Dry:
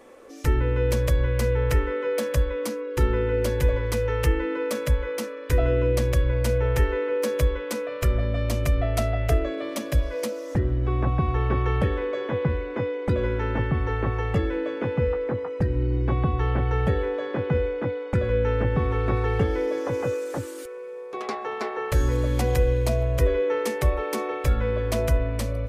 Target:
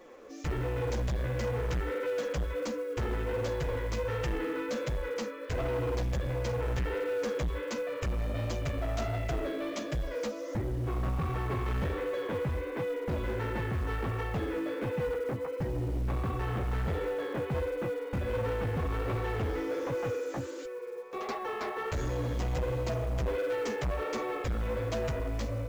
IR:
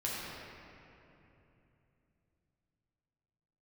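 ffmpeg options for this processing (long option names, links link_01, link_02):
-af "flanger=delay=5.5:depth=9.8:regen=1:speed=1.4:shape=sinusoidal,aresample=16000,asoftclip=type=tanh:threshold=-28dB,aresample=44100,acrusher=bits=7:mode=log:mix=0:aa=0.000001"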